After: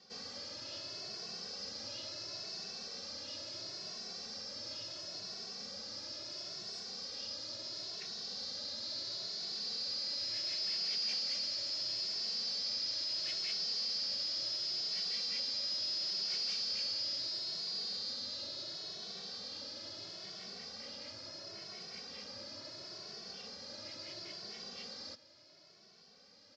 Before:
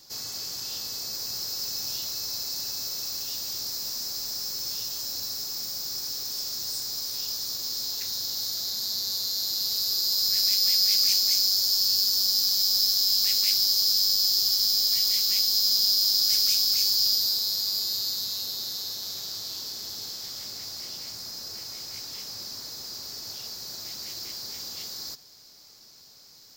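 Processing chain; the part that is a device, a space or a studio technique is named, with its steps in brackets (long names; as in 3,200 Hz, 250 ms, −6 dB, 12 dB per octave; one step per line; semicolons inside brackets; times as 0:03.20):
barber-pole flanger into a guitar amplifier (barber-pole flanger 2.2 ms +0.73 Hz; soft clipping −25 dBFS, distortion −12 dB; loudspeaker in its box 100–4,400 Hz, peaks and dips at 130 Hz −6 dB, 190 Hz +4 dB, 580 Hz +8 dB, 900 Hz −5 dB, 3,800 Hz −6 dB)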